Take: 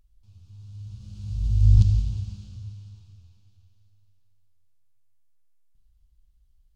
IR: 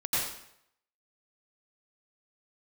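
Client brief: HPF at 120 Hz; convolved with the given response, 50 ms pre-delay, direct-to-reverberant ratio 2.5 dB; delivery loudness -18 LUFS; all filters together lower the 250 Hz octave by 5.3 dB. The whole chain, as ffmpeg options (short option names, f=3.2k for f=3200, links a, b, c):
-filter_complex "[0:a]highpass=120,equalizer=f=250:t=o:g=-7,asplit=2[a][b];[1:a]atrim=start_sample=2205,adelay=50[c];[b][c]afir=irnorm=-1:irlink=0,volume=-11.5dB[d];[a][d]amix=inputs=2:normalize=0,volume=11.5dB"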